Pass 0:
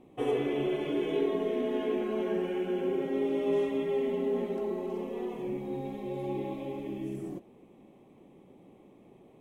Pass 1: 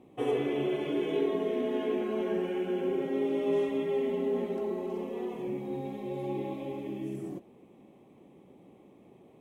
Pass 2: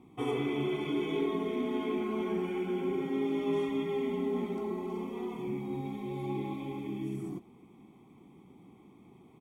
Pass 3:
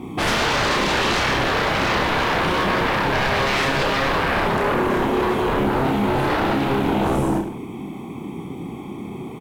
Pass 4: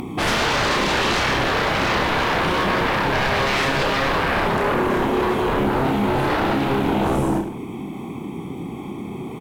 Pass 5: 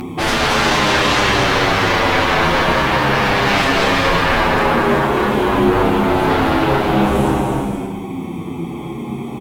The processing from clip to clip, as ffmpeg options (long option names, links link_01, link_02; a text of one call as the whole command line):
ffmpeg -i in.wav -af "highpass=50" out.wav
ffmpeg -i in.wav -af "aecho=1:1:0.9:0.77,volume=-1.5dB" out.wav
ffmpeg -i in.wav -af "aeval=exprs='0.0944*sin(PI/2*7.08*val(0)/0.0944)':channel_layout=same,aecho=1:1:30|64.5|104.2|149.8|202.3:0.631|0.398|0.251|0.158|0.1,volume=1.5dB" out.wav
ffmpeg -i in.wav -af "acompressor=mode=upward:threshold=-26dB:ratio=2.5" out.wav
ffmpeg -i in.wav -filter_complex "[0:a]aecho=1:1:230|379.5|476.7|539.8|580.9:0.631|0.398|0.251|0.158|0.1,asplit=2[link_01][link_02];[link_02]adelay=8.7,afreqshift=-0.48[link_03];[link_01][link_03]amix=inputs=2:normalize=1,volume=6dB" out.wav